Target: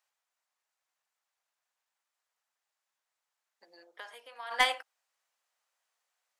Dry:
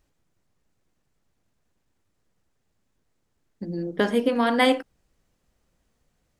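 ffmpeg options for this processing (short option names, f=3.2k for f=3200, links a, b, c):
-filter_complex "[0:a]asplit=3[a][b][c];[a]afade=t=out:st=3.83:d=0.02[d];[b]acompressor=threshold=-31dB:ratio=5,afade=t=in:st=3.83:d=0.02,afade=t=out:st=4.5:d=0.02[e];[c]afade=t=in:st=4.5:d=0.02[f];[d][e][f]amix=inputs=3:normalize=0,highpass=f=760:w=0.5412,highpass=f=760:w=1.3066,aeval=exprs='0.335*(cos(1*acos(clip(val(0)/0.335,-1,1)))-cos(1*PI/2))+0.0188*(cos(2*acos(clip(val(0)/0.335,-1,1)))-cos(2*PI/2))+0.0531*(cos(3*acos(clip(val(0)/0.335,-1,1)))-cos(3*PI/2))+0.00376*(cos(4*acos(clip(val(0)/0.335,-1,1)))-cos(4*PI/2))+0.00266*(cos(5*acos(clip(val(0)/0.335,-1,1)))-cos(5*PI/2))':c=same"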